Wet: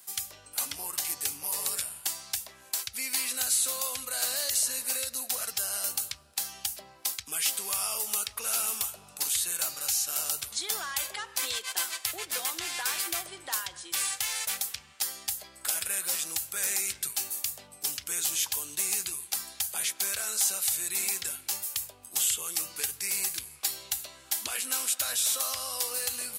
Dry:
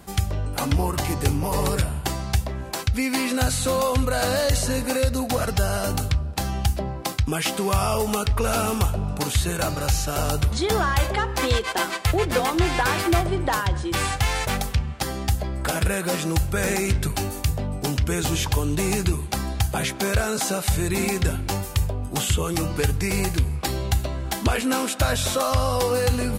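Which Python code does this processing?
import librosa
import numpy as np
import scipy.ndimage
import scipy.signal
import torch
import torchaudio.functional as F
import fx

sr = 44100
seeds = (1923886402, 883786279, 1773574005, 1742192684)

y = np.diff(x, prepend=0.0)
y = y * 10.0 ** (1.5 / 20.0)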